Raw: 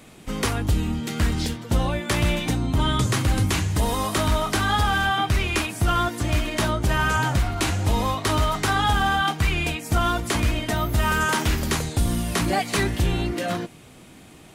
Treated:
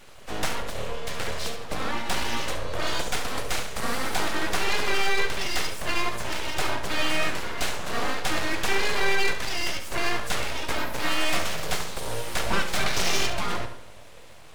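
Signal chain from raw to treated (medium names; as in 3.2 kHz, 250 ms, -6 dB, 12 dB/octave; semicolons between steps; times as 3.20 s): 12.86–13.30 s: peaking EQ 2.7 kHz +15 dB 2.1 oct; in parallel at -5 dB: hard clipper -22.5 dBFS, distortion -9 dB; on the sum: steep high-pass 200 Hz 72 dB/octave; treble shelf 8.2 kHz -9.5 dB; simulated room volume 2800 m³, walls furnished, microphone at 1.1 m; full-wave rectifier; on a send: flutter echo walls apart 11.9 m, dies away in 0.4 s; on the sum: trim -2.5 dB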